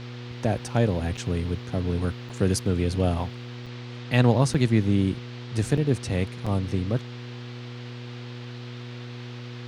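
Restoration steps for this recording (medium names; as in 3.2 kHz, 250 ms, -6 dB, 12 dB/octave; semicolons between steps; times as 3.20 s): de-hum 121.3 Hz, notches 4; interpolate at 1.17/2.29/3.66/4.54/5.77/6.46 s, 5.3 ms; noise print and reduce 30 dB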